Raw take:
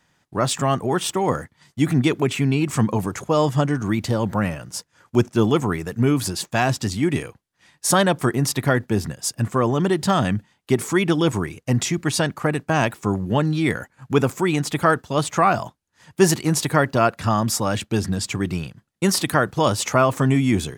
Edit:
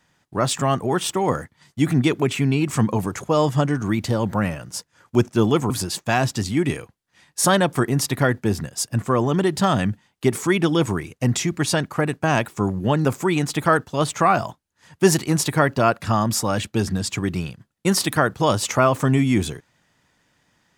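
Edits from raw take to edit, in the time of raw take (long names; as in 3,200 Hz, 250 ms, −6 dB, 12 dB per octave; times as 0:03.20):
0:05.70–0:06.16: remove
0:13.51–0:14.22: remove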